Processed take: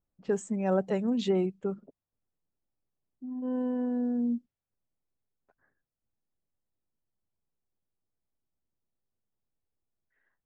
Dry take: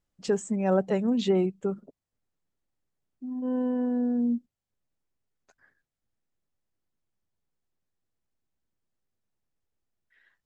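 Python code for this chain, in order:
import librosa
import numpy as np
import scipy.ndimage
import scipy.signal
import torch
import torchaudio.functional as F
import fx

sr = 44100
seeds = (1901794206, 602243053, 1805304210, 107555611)

y = fx.env_lowpass(x, sr, base_hz=1100.0, full_db=-23.0)
y = F.gain(torch.from_numpy(y), -3.0).numpy()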